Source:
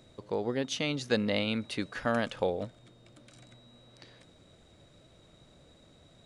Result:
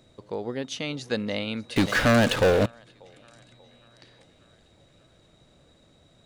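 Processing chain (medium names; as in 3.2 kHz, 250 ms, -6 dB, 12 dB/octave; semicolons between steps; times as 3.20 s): on a send: thinning echo 587 ms, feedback 62%, high-pass 420 Hz, level -20 dB; 1.76–2.66 s: on the sum: waveshaping leveller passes 5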